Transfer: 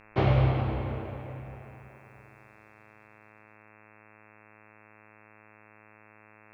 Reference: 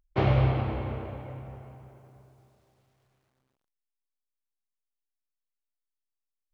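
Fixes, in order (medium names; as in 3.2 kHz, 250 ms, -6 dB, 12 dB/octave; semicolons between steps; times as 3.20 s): de-hum 107.2 Hz, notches 25; inverse comb 271 ms -20.5 dB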